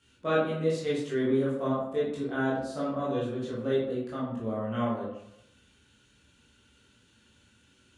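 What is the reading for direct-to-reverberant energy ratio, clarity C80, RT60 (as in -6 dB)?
-8.0 dB, 5.5 dB, 0.80 s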